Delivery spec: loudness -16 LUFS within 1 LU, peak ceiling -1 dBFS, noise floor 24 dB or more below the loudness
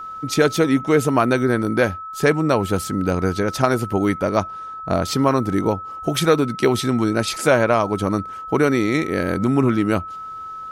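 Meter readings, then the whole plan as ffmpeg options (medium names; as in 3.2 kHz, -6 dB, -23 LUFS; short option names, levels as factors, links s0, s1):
steady tone 1.3 kHz; tone level -30 dBFS; loudness -19.5 LUFS; peak level -1.5 dBFS; loudness target -16.0 LUFS
-> -af "bandreject=f=1300:w=30"
-af "volume=1.5,alimiter=limit=0.891:level=0:latency=1"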